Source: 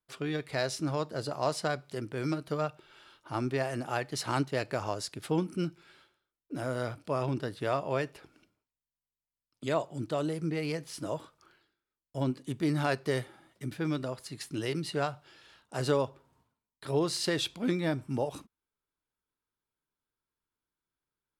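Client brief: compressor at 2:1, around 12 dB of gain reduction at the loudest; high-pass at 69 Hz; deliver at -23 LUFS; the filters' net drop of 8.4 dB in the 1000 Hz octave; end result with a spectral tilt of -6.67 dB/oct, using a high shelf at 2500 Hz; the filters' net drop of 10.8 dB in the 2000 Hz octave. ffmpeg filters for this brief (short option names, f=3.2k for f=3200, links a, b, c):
-af "highpass=69,equalizer=f=1k:t=o:g=-9,equalizer=f=2k:t=o:g=-7.5,highshelf=f=2.5k:g=-7.5,acompressor=threshold=-48dB:ratio=2,volume=22.5dB"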